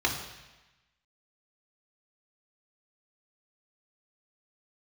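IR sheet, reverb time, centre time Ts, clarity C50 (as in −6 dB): 1.1 s, 31 ms, 6.5 dB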